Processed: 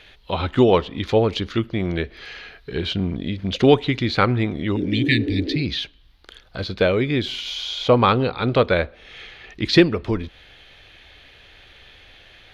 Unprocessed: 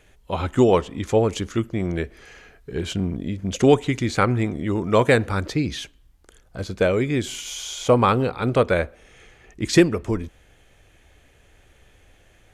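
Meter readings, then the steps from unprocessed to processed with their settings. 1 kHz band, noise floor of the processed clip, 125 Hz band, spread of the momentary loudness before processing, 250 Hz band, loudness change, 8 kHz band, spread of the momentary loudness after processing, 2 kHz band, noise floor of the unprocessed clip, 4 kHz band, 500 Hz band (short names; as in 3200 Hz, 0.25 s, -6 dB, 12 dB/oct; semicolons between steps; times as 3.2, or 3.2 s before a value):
+0.5 dB, -51 dBFS, +1.0 dB, 14 LU, +1.5 dB, +1.0 dB, -11.0 dB, 15 LU, +2.5 dB, -56 dBFS, +7.0 dB, +0.5 dB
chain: spectral repair 4.79–5.59, 270–1700 Hz after; resonant high shelf 5600 Hz -12 dB, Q 3; mismatched tape noise reduction encoder only; gain +1 dB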